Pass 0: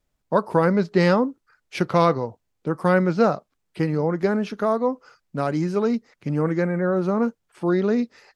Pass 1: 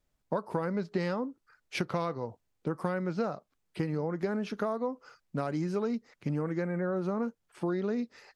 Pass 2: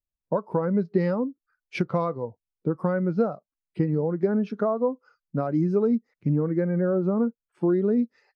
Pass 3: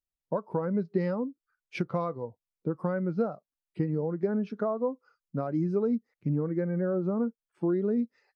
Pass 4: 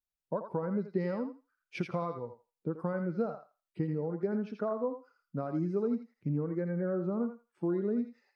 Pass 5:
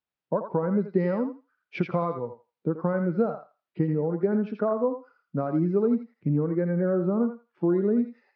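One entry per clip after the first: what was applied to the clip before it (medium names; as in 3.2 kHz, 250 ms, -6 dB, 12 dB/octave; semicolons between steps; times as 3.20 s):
compression, threshold -25 dBFS, peak gain reduction 12.5 dB; trim -3 dB
spectral contrast expander 1.5:1; trim +5.5 dB
vibrato 3.1 Hz 23 cents; trim -5 dB
thinning echo 83 ms, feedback 23%, high-pass 940 Hz, level -4.5 dB; trim -4 dB
high-pass 110 Hz; distance through air 250 m; trim +8.5 dB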